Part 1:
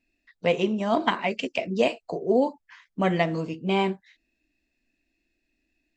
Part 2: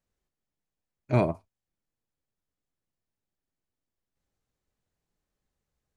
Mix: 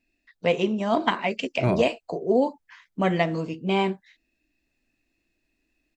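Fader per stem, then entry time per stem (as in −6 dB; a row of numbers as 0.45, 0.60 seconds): +0.5, −0.5 decibels; 0.00, 0.50 seconds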